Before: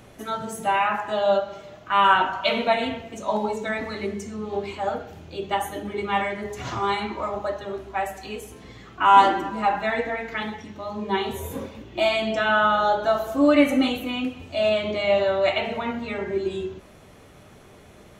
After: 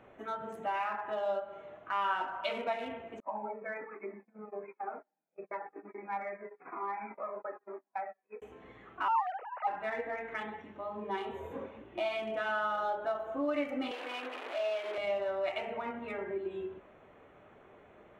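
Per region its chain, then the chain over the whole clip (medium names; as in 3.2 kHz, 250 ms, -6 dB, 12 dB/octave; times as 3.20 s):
3.20–8.42 s: gate -33 dBFS, range -31 dB + brick-wall FIR band-pass 160–2600 Hz + Shepard-style flanger falling 1.1 Hz
9.08–9.67 s: formants replaced by sine waves + hum notches 60/120/180/240/300 Hz
13.91–14.98 s: one-bit delta coder 32 kbps, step -24 dBFS + high-pass 360 Hz 24 dB/octave
whole clip: local Wiener filter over 9 samples; tone controls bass -12 dB, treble -11 dB; compression 2:1, threshold -31 dBFS; trim -5 dB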